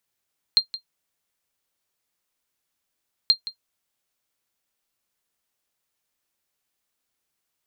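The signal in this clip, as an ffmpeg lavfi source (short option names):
-f lavfi -i "aevalsrc='0.447*(sin(2*PI*4190*mod(t,2.73))*exp(-6.91*mod(t,2.73)/0.1)+0.168*sin(2*PI*4190*max(mod(t,2.73)-0.17,0))*exp(-6.91*max(mod(t,2.73)-0.17,0)/0.1))':d=5.46:s=44100"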